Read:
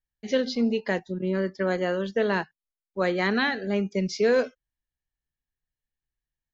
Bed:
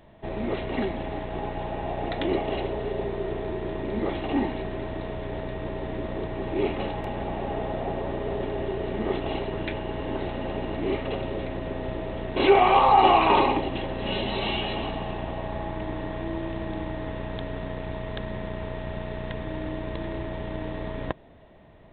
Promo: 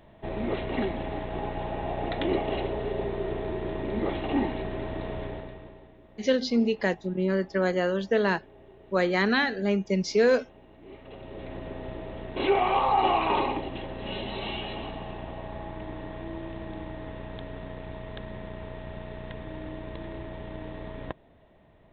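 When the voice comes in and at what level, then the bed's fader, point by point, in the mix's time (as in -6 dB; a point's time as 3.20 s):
5.95 s, +0.5 dB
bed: 5.23 s -1 dB
5.97 s -22.5 dB
10.79 s -22.5 dB
11.53 s -6 dB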